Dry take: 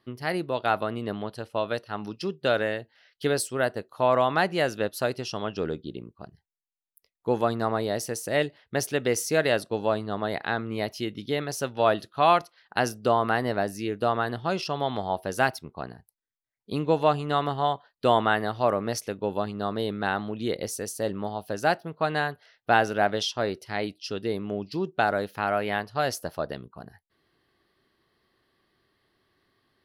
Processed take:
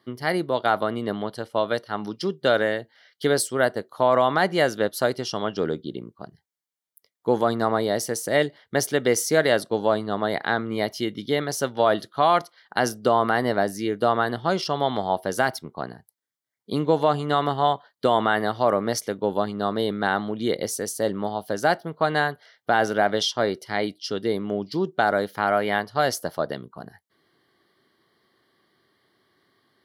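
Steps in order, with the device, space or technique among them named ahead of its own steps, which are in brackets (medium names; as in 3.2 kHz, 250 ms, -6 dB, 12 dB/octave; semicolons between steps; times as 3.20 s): PA system with an anti-feedback notch (high-pass 130 Hz; Butterworth band-stop 2.6 kHz, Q 6.8; peak limiter -12 dBFS, peak gain reduction 5.5 dB); trim +4.5 dB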